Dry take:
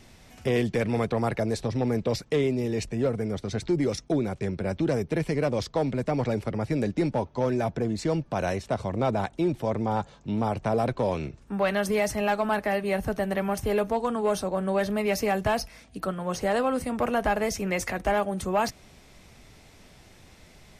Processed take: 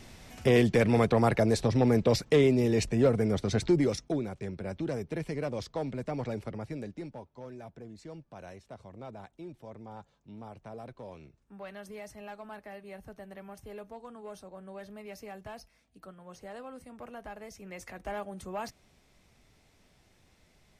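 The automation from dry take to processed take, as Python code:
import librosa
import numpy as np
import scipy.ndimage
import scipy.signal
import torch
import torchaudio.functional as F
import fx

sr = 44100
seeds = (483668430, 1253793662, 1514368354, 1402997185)

y = fx.gain(x, sr, db=fx.line((3.64, 2.0), (4.31, -8.0), (6.47, -8.0), (7.29, -19.0), (17.49, -19.0), (18.15, -12.0)))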